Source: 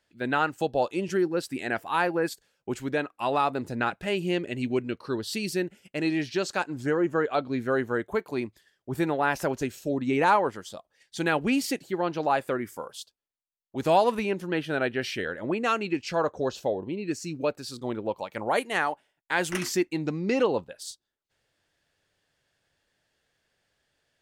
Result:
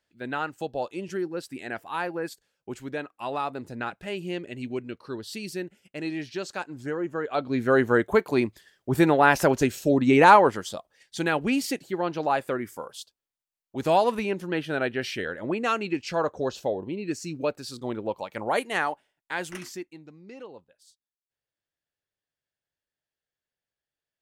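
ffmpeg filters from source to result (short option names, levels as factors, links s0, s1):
-af "volume=2.24,afade=t=in:st=7.22:d=0.67:silence=0.251189,afade=t=out:st=10.58:d=0.7:silence=0.446684,afade=t=out:st=18.88:d=0.67:silence=0.398107,afade=t=out:st=19.55:d=0.49:silence=0.281838"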